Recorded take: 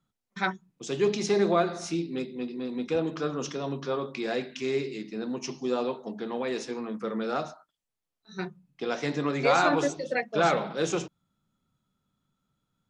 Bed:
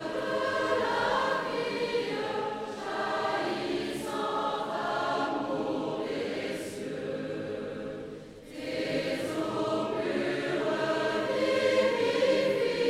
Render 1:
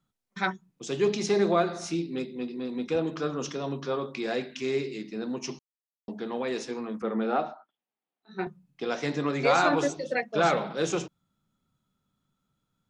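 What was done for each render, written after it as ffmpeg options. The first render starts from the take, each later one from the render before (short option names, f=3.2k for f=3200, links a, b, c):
-filter_complex "[0:a]asettb=1/sr,asplit=3[a][b][c];[a]atrim=end=7.024[d];[b]atrim=start=7.02:end=8.47,asetpts=PTS-STARTPTS,afade=t=in:d=0.004:c=qsin,afade=t=out:st=1.446:d=0.004:c=qsin,highpass=220,equalizer=f=230:t=q:w=4:g=7,equalizer=f=370:t=q:w=4:g=4,equalizer=f=780:t=q:w=4:g=8,lowpass=f=3.4k:w=0.5412,lowpass=f=3.4k:w=1.3066[e];[c]atrim=start=8.466[f];[d][e]acrossfade=d=0.004:c1=hsin:c2=qsin[g];[g][f]acrossfade=d=0.004:c1=qsin:c2=hsin,asplit=3[h][i][j];[h]atrim=end=5.59,asetpts=PTS-STARTPTS,afade=t=out:st=5.586:d=0.004:c=hsin[k];[i]atrim=start=5.59:end=6.08,asetpts=PTS-STARTPTS,volume=0[l];[j]atrim=start=6.08,asetpts=PTS-STARTPTS,afade=t=in:d=0.004:c=hsin[m];[k][l][m]concat=n=3:v=0:a=1"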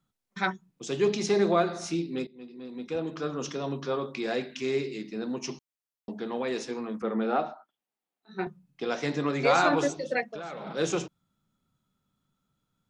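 -filter_complex "[0:a]asettb=1/sr,asplit=3[a][b][c];[a]atrim=end=10.244[d];[b]atrim=start=10.24:end=10.67,asetpts=PTS-STARTPTS,afade=t=in:d=0.004:c=qsin,afade=t=out:st=0.426:d=0.004:c=qsin,acompressor=threshold=-34dB:ratio=16:attack=3.2:release=140:knee=1:detection=peak[e];[c]atrim=start=10.666[f];[d][e]acrossfade=d=0.004:c1=hsin:c2=qsin[g];[g][f]acrossfade=d=0.004:c1=qsin:c2=hsin,asplit=2[h][i];[h]atrim=end=2.27,asetpts=PTS-STARTPTS,afade=t=out:st=2.266:d=0.004:c=hsin:silence=0.16788[j];[i]atrim=start=2.27,asetpts=PTS-STARTPTS,afade=t=in:d=1.31:silence=0.16788[k];[j][k]concat=n=2:v=0:a=1"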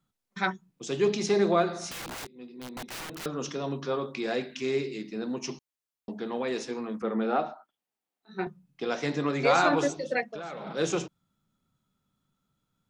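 -filter_complex "[0:a]asettb=1/sr,asplit=3[a][b][c];[a]atrim=end=1.914[d];[b]atrim=start=1.91:end=3.26,asetpts=PTS-STARTPTS,afade=t=in:d=0.004:c=qsin,afade=t=out:st=1.346:d=0.004:c=qsin,aeval=exprs='(mod(50.1*val(0)+1,2)-1)/50.1':c=same[e];[c]atrim=start=3.256[f];[d][e]acrossfade=d=0.004:c1=hsin:c2=qsin[g];[g][f]acrossfade=d=0.004:c1=qsin:c2=hsin"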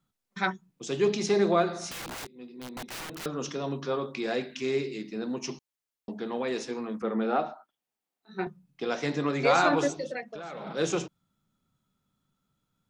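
-filter_complex "[0:a]asettb=1/sr,asplit=3[a][b][c];[a]atrim=end=10.094[d];[b]atrim=start=10.09:end=10.55,asetpts=PTS-STARTPTS,afade=t=in:d=0.004:c=qsin,afade=t=out:st=0.456:d=0.004:c=qsin,acompressor=threshold=-36dB:ratio=2:attack=3.2:release=140:knee=1:detection=peak[e];[c]atrim=start=10.546[f];[d][e]acrossfade=d=0.004:c1=hsin:c2=qsin[g];[g][f]acrossfade=d=0.004:c1=qsin:c2=hsin"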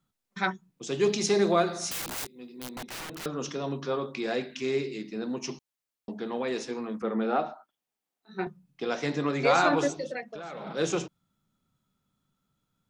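-filter_complex "[0:a]asettb=1/sr,asplit=3[a][b][c];[a]atrim=end=1.004[d];[b]atrim=start=1:end=2.76,asetpts=PTS-STARTPTS,afade=t=in:d=0.004:c=qsin,afade=t=out:st=1.756:d=0.004:c=qsin,highshelf=f=5.8k:g=10.5[e];[c]atrim=start=2.756[f];[d][e]acrossfade=d=0.004:c1=hsin:c2=qsin[g];[g][f]acrossfade=d=0.004:c1=qsin:c2=hsin"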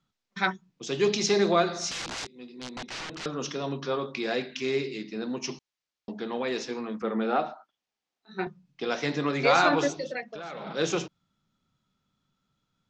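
-af "lowpass=f=6.4k:w=0.5412,lowpass=f=6.4k:w=1.3066,equalizer=f=4.4k:w=0.33:g=4"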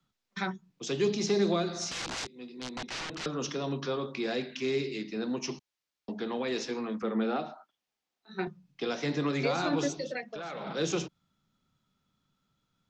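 -filter_complex "[0:a]acrossover=split=160|1500[a][b][c];[c]alimiter=level_in=0.5dB:limit=-24dB:level=0:latency=1:release=240,volume=-0.5dB[d];[a][b][d]amix=inputs=3:normalize=0,acrossover=split=370|3000[e][f][g];[f]acompressor=threshold=-35dB:ratio=3[h];[e][h][g]amix=inputs=3:normalize=0"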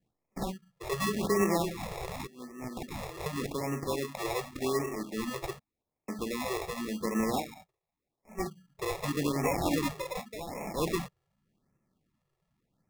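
-af "acrusher=samples=29:mix=1:aa=0.000001,afftfilt=real='re*(1-between(b*sr/1024,220*pow(3900/220,0.5+0.5*sin(2*PI*0.87*pts/sr))/1.41,220*pow(3900/220,0.5+0.5*sin(2*PI*0.87*pts/sr))*1.41))':imag='im*(1-between(b*sr/1024,220*pow(3900/220,0.5+0.5*sin(2*PI*0.87*pts/sr))/1.41,220*pow(3900/220,0.5+0.5*sin(2*PI*0.87*pts/sr))*1.41))':win_size=1024:overlap=0.75"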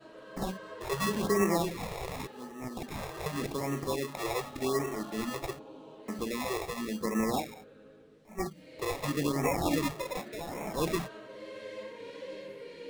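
-filter_complex "[1:a]volume=-17.5dB[a];[0:a][a]amix=inputs=2:normalize=0"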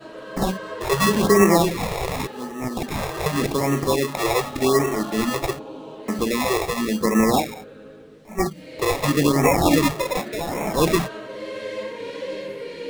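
-af "volume=12dB"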